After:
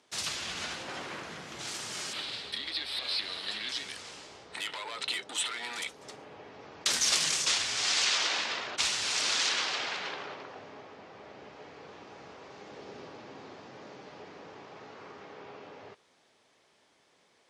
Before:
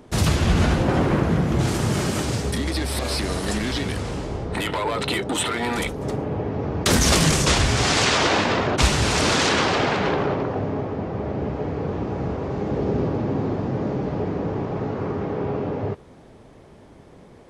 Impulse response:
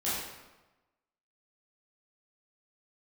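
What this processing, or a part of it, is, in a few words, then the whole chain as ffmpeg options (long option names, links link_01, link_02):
piezo pickup straight into a mixer: -filter_complex "[0:a]asettb=1/sr,asplit=3[link_01][link_02][link_03];[link_01]atrim=end=2.134[link_04];[link_02]atrim=start=2.13:end=3.69,asetpts=PTS-STARTPTS,afade=type=in:duration=0.004:curve=qsin,afade=type=out:start_time=1.556:duration=0.004:curve=qsin,highshelf=frequency=5000:width_type=q:width=3:gain=-8.5[link_05];[link_03]atrim=start=3.686[link_06];[link_04][link_05]acrossfade=duration=0.004:curve1=hsin:curve2=qsin[link_07];[link_07][link_06]acrossfade=duration=0.004:curve1=qsin:curve2=hsin,lowpass=5200,aderivative,volume=2dB"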